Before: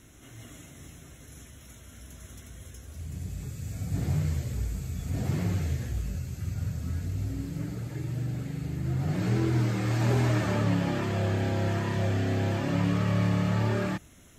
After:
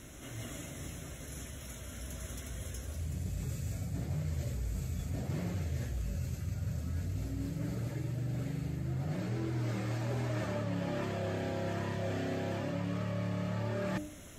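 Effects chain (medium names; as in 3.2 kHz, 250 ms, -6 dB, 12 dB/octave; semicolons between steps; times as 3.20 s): peaking EQ 580 Hz +6.5 dB 0.3 oct; de-hum 100.2 Hz, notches 8; reverse; compression 6:1, threshold -37 dBFS, peak gain reduction 15 dB; reverse; trim +4 dB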